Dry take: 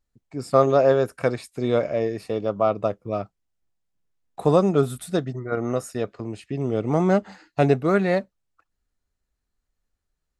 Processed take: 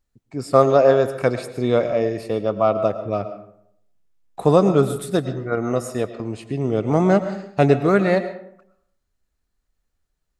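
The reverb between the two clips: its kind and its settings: digital reverb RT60 0.71 s, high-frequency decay 0.55×, pre-delay 70 ms, DRR 11 dB; gain +3 dB

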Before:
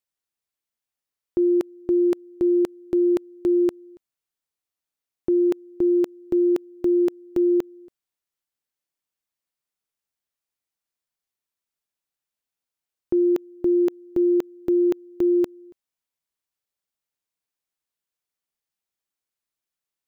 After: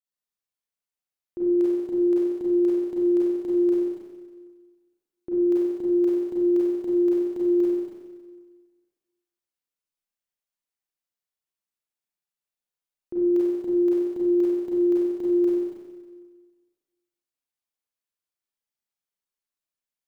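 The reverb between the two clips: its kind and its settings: Schroeder reverb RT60 1.5 s, combs from 31 ms, DRR -7.5 dB; gain -12.5 dB

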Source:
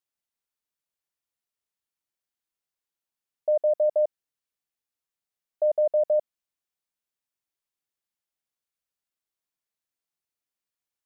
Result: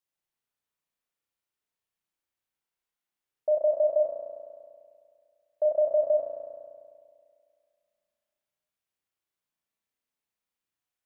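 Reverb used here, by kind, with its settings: spring tank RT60 2.1 s, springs 34 ms, chirp 60 ms, DRR -2.5 dB; gain -2 dB

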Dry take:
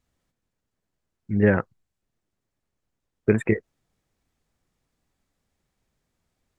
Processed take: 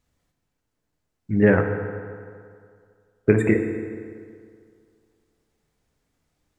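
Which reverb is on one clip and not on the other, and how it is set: FDN reverb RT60 2.2 s, low-frequency decay 0.9×, high-frequency decay 0.65×, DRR 4.5 dB; gain +2 dB

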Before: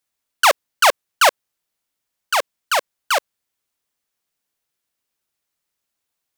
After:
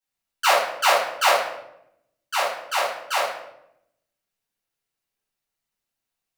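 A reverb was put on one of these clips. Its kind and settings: shoebox room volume 210 m³, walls mixed, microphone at 4.3 m; gain -16 dB

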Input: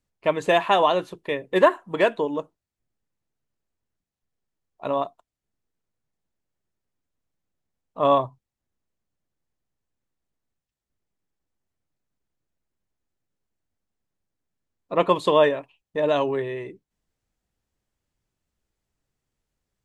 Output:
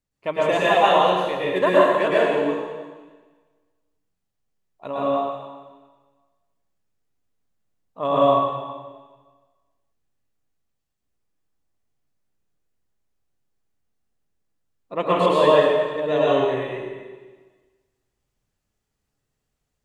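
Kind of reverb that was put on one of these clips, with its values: plate-style reverb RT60 1.4 s, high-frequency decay 1×, pre-delay 95 ms, DRR -7.5 dB; gain -5 dB

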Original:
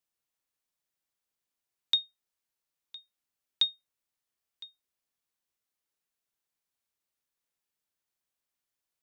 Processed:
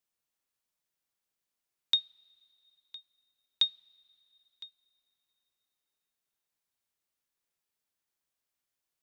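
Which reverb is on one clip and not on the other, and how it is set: two-slope reverb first 0.38 s, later 3.5 s, from -18 dB, DRR 19 dB

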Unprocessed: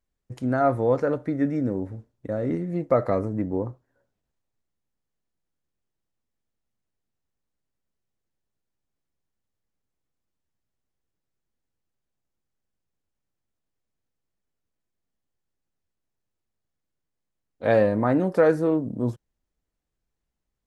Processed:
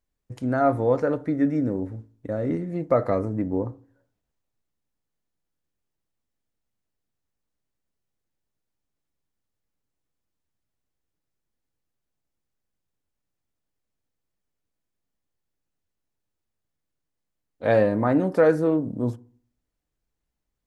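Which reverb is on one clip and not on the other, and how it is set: FDN reverb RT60 0.49 s, low-frequency decay 1.25×, high-frequency decay 0.4×, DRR 17 dB

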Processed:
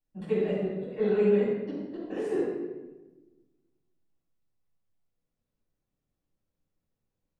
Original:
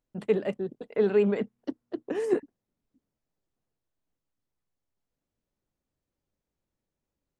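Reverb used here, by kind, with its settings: shoebox room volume 680 m³, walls mixed, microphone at 9.1 m; gain -17 dB

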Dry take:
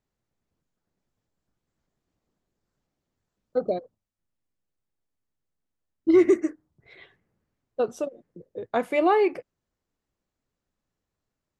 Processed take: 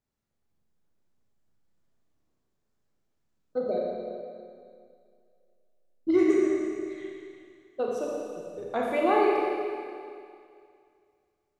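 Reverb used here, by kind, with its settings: Schroeder reverb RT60 2.3 s, combs from 28 ms, DRR -3 dB; gain -5.5 dB

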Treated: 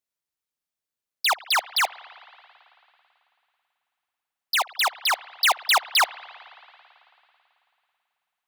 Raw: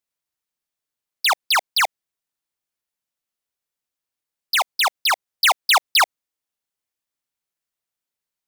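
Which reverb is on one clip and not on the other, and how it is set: spring tank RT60 3 s, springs 54 ms, chirp 40 ms, DRR 18 dB; gain -3.5 dB

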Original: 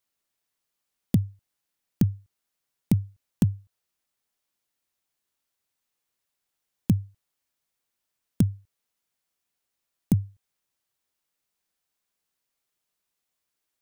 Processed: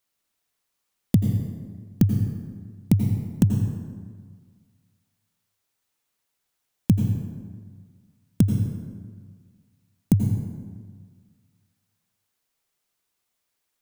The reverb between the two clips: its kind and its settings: plate-style reverb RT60 1.7 s, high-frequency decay 0.55×, pre-delay 75 ms, DRR 3.5 dB; gain +3 dB

